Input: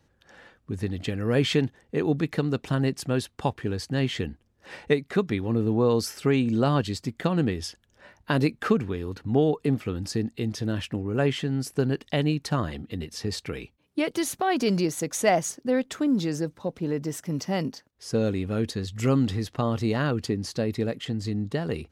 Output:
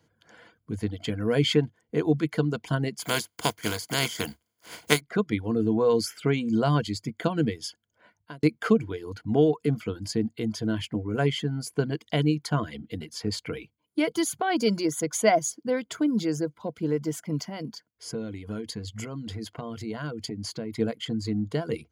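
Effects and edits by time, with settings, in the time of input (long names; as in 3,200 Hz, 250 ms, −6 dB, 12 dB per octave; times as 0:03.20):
0:02.99–0:04.99: compressing power law on the bin magnitudes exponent 0.4
0:07.67–0:08.43: fade out
0:17.39–0:20.79: downward compressor, threshold −29 dBFS
whole clip: EQ curve with evenly spaced ripples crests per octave 1.8, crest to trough 9 dB; reverb reduction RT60 0.56 s; high-pass filter 100 Hz; level −1 dB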